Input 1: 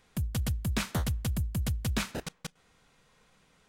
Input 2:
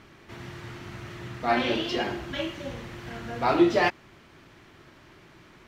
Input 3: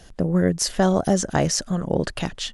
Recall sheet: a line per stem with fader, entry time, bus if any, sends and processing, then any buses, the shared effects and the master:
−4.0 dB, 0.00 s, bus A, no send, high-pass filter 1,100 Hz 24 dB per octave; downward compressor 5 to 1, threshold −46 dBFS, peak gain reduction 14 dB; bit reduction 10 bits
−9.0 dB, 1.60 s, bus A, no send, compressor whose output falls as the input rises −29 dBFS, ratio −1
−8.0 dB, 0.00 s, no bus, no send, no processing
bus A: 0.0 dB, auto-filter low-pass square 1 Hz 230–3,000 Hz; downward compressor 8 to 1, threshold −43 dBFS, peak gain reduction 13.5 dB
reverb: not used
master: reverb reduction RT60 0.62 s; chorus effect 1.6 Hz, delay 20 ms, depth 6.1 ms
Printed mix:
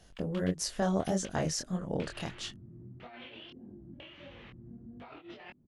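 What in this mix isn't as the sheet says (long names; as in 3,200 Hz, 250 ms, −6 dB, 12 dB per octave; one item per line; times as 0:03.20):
stem 1: missing downward compressor 5 to 1, threshold −46 dBFS, peak gain reduction 14 dB
master: missing reverb reduction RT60 0.62 s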